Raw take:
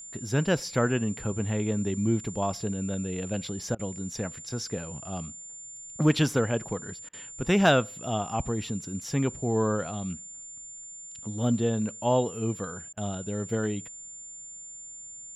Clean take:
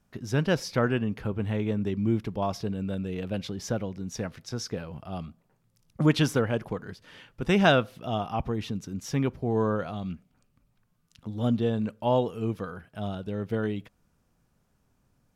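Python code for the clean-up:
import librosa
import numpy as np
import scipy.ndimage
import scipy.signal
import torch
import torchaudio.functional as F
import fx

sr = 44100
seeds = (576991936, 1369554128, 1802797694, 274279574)

y = fx.fix_declip(x, sr, threshold_db=-11.5)
y = fx.notch(y, sr, hz=7200.0, q=30.0)
y = fx.fix_interpolate(y, sr, at_s=(3.75, 7.09, 12.93), length_ms=41.0)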